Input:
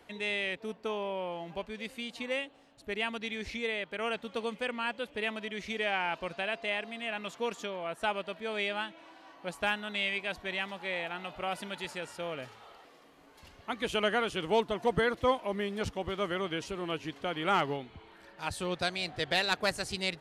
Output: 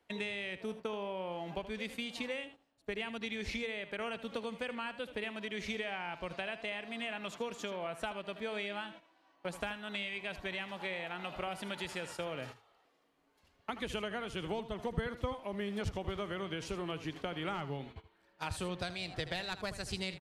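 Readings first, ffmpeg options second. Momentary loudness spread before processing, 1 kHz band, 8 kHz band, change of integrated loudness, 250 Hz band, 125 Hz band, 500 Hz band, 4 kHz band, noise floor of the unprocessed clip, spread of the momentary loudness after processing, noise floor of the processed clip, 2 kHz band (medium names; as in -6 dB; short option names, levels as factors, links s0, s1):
10 LU, -7.5 dB, -4.0 dB, -6.0 dB, -3.0 dB, -0.5 dB, -6.0 dB, -6.0 dB, -58 dBFS, 4 LU, -71 dBFS, -6.5 dB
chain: -filter_complex "[0:a]agate=range=0.112:threshold=0.00447:ratio=16:detection=peak,acrossover=split=140[s0][s1];[s1]acompressor=threshold=0.0112:ratio=10[s2];[s0][s2]amix=inputs=2:normalize=0,aecho=1:1:79:0.224,volume=1.5"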